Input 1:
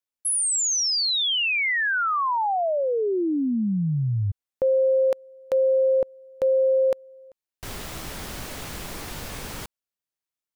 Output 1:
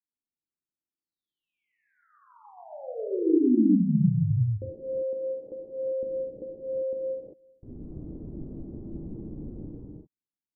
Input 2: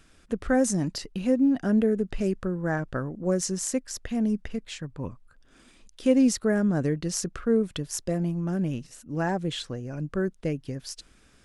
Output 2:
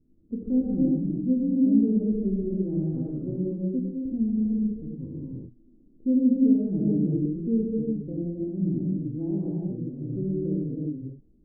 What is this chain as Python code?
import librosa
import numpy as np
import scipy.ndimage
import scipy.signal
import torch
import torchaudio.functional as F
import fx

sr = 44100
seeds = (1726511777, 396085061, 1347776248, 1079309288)

y = fx.ladder_lowpass(x, sr, hz=360.0, resonance_pct=45)
y = fx.rev_gated(y, sr, seeds[0], gate_ms=420, shape='flat', drr_db=-6.5)